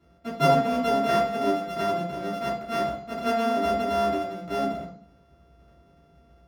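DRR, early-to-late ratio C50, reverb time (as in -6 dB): -7.5 dB, 6.5 dB, 0.60 s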